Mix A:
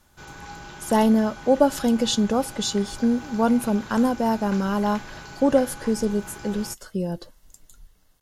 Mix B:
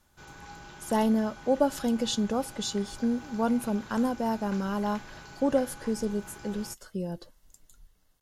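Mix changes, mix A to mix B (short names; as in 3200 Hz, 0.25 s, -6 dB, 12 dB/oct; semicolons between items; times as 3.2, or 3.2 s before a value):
speech -6.5 dB; background -6.5 dB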